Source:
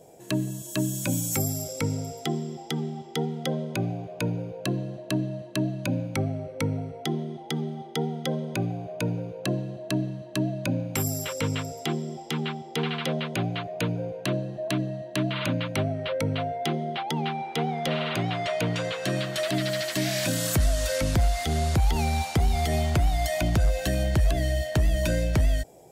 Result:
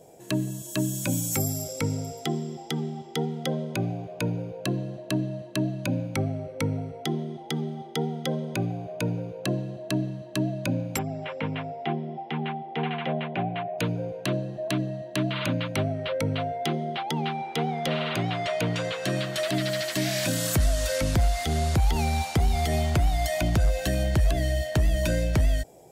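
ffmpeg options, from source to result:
-filter_complex "[0:a]asplit=3[a][b][c];[a]afade=t=out:st=10.97:d=0.02[d];[b]highpass=f=130:w=0.5412,highpass=f=130:w=1.3066,equalizer=f=300:t=q:w=4:g=-4,equalizer=f=490:t=q:w=4:g=-4,equalizer=f=750:t=q:w=4:g=8,equalizer=f=1.3k:t=q:w=4:g=-5,lowpass=f=2.8k:w=0.5412,lowpass=f=2.8k:w=1.3066,afade=t=in:st=10.97:d=0.02,afade=t=out:st=13.77:d=0.02[e];[c]afade=t=in:st=13.77:d=0.02[f];[d][e][f]amix=inputs=3:normalize=0"

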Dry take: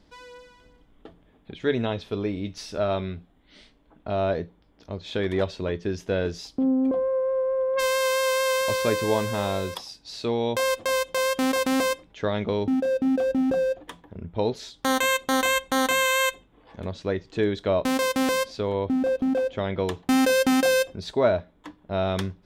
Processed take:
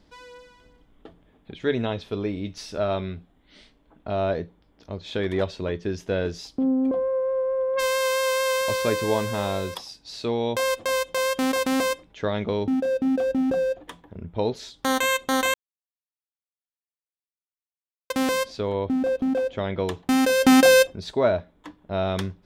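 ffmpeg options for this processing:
-filter_complex "[0:a]asettb=1/sr,asplit=3[a][b][c];[a]atrim=end=20.434[d];[b]atrim=start=20.43:end=20.87,asetpts=PTS-STARTPTS,afade=t=in:d=0.004:c=qsin,afade=t=out:st=0.436:d=0.004:c=qsin,acontrast=61[e];[c]atrim=start=20.866[f];[d][e]acrossfade=d=0.004:c1=hsin:c2=qsin[g];[g][f]acrossfade=d=0.004:c1=qsin:c2=hsin,asplit=3[h][i][j];[h]atrim=end=15.54,asetpts=PTS-STARTPTS,afade=t=out:st=15.536:d=0.004:c=hsin[k];[i]atrim=start=15.54:end=18.1,asetpts=PTS-STARTPTS,volume=0[l];[j]atrim=start=18.1,asetpts=PTS-STARTPTS,afade=t=in:d=0.004:c=hsin[m];[k][l][m]concat=n=3:v=0:a=1"

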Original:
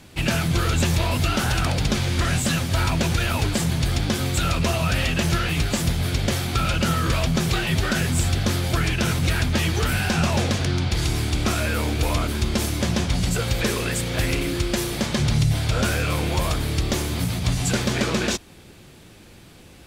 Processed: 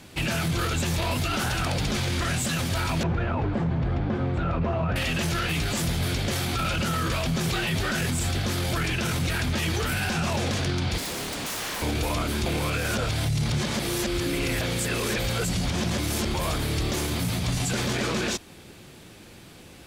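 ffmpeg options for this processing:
-filter_complex "[0:a]asettb=1/sr,asplit=3[a][b][c];[a]atrim=end=3.034[d];[b]atrim=start=3.03:end=4.96,asetpts=PTS-STARTPTS,afade=t=in:d=0.004:c=qsin,afade=t=out:st=1.926:d=0.004:c=qsin,lowpass=1.2k[e];[c]atrim=start=4.956[f];[d][e]acrossfade=d=0.004:c1=hsin:c2=qsin[g];[g][f]acrossfade=d=0.004:c1=qsin:c2=hsin,asettb=1/sr,asplit=3[h][i][j];[h]atrim=end=10.984[k];[i]atrim=start=10.98:end=11.82,asetpts=PTS-STARTPTS,afade=t=in:d=0.004:c=qsin,afade=t=out:st=0.836:d=0.004:c=qsin,aeval=exprs='0.0422*(abs(mod(val(0)/0.0422+3,4)-2)-1)':c=same[l];[j]atrim=start=11.816[m];[k][l]acrossfade=d=0.004:c1=hsin:c2=qsin[n];[n][m]acrossfade=d=0.004:c1=qsin:c2=hsin,asplit=3[o][p][q];[o]atrim=end=12.462[r];[p]atrim=start=12.458:end=16.342,asetpts=PTS-STARTPTS,areverse[s];[q]atrim=start=16.338[t];[r][s]acrossfade=d=0.004:c1=hsin:c2=hsin[u];[u][t]acrossfade=d=0.004:c1=hsin:c2=hsin,lowshelf=f=80:g=-7,alimiter=limit=-19dB:level=0:latency=1:release=12,acontrast=77,volume=-6dB"

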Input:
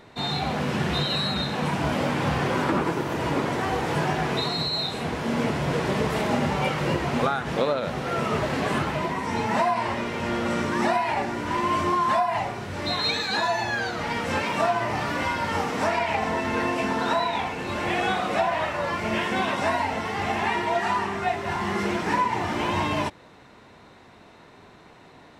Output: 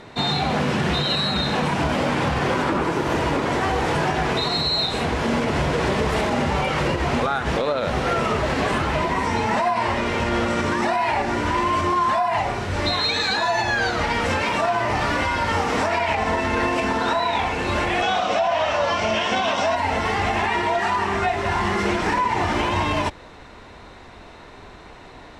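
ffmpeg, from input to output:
-filter_complex "[0:a]asettb=1/sr,asplit=3[a][b][c];[a]atrim=end=18.024[d];[b]atrim=start=18.02:end=19.76,asetpts=PTS-STARTPTS,afade=t=in:d=0.004:c=qsin,afade=t=out:st=1.736:d=0.004:c=qsin,highpass=100,equalizer=f=150:t=q:w=4:g=-7,equalizer=f=360:t=q:w=4:g=-6,equalizer=f=660:t=q:w=4:g=6,equalizer=f=1.9k:t=q:w=4:g=-4,equalizer=f=3.1k:t=q:w=4:g=6,equalizer=f=5.7k:t=q:w=4:g=7,lowpass=f=8k:w=0.5412,lowpass=f=8k:w=1.3066[e];[c]atrim=start=19.756[f];[d][e]acrossfade=d=0.004:c1=hsin:c2=qsin[g];[g][f]acrossfade=d=0.004:c1=qsin:c2=hsin,lowpass=10k,asubboost=boost=6:cutoff=56,alimiter=limit=-20dB:level=0:latency=1:release=94,volume=7.5dB"

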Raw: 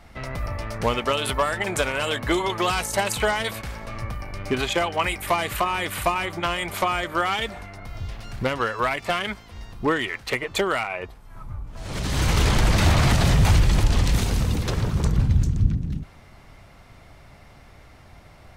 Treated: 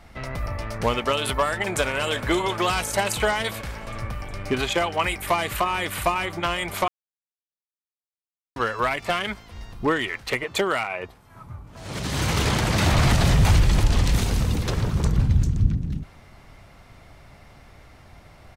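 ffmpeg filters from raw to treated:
-filter_complex "[0:a]asplit=2[a][b];[b]afade=t=in:st=1.46:d=0.01,afade=t=out:st=2.12:d=0.01,aecho=0:1:360|720|1080|1440|1800|2160|2520|2880|3240|3600|3960|4320:0.177828|0.142262|0.11381|0.0910479|0.0728383|0.0582707|0.0466165|0.0372932|0.0298346|0.0238677|0.0190941|0.0152753[c];[a][c]amix=inputs=2:normalize=0,asettb=1/sr,asplit=3[d][e][f];[d]atrim=end=10.444[g];[e]atrim=start=10.44:end=12.93,asetpts=PTS-STARTPTS,afade=t=in:d=0.004:c=qsin,afade=t=out:st=2.486:d=0.004:c=qsin,highpass=85[h];[f]atrim=start=12.926[i];[g][h]acrossfade=d=0.004:c1=hsin:c2=qsin[j];[j][i]acrossfade=d=0.004:c1=qsin:c2=hsin,asplit=3[k][l][m];[k]atrim=end=6.88,asetpts=PTS-STARTPTS,afade=t=out:st=6.876:d=0.004:c=hsin[n];[l]atrim=start=6.88:end=8.56,asetpts=PTS-STARTPTS,volume=0[o];[m]atrim=start=8.56,asetpts=PTS-STARTPTS,afade=t=in:d=0.004:c=hsin[p];[n][o][p]concat=n=3:v=0:a=1"

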